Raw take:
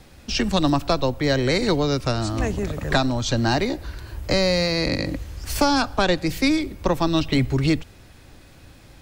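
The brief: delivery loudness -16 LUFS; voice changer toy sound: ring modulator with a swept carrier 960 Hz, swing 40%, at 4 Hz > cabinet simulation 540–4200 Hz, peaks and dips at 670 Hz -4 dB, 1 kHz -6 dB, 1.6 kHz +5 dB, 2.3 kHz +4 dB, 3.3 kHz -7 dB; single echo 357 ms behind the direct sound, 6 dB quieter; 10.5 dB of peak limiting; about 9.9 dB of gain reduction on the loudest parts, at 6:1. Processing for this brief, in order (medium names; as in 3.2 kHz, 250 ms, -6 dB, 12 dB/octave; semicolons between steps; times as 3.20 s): compression 6:1, threshold -26 dBFS; peak limiter -23.5 dBFS; delay 357 ms -6 dB; ring modulator with a swept carrier 960 Hz, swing 40%, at 4 Hz; cabinet simulation 540–4200 Hz, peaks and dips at 670 Hz -4 dB, 1 kHz -6 dB, 1.6 kHz +5 dB, 2.3 kHz +4 dB, 3.3 kHz -7 dB; trim +19.5 dB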